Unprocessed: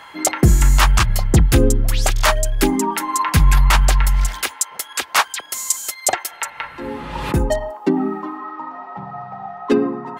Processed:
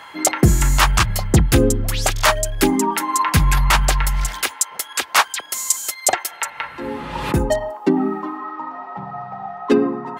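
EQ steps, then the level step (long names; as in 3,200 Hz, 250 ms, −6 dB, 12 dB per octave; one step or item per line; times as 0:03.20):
high-pass filter 72 Hz 6 dB per octave
+1.0 dB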